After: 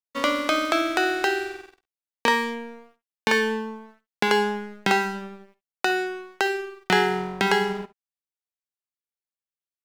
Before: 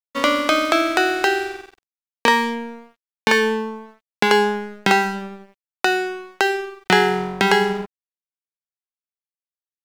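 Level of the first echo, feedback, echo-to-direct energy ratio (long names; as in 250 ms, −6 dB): −18.5 dB, repeats not evenly spaced, −16.0 dB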